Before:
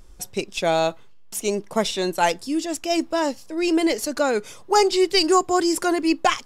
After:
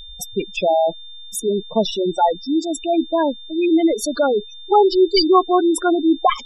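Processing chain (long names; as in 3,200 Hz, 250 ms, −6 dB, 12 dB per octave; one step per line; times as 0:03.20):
gate on every frequency bin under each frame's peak −10 dB strong
steady tone 3,600 Hz −42 dBFS
level +5 dB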